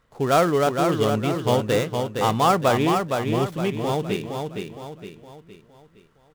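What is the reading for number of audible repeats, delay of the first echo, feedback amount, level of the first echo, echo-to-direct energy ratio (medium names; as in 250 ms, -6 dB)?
5, 464 ms, 43%, -5.0 dB, -4.0 dB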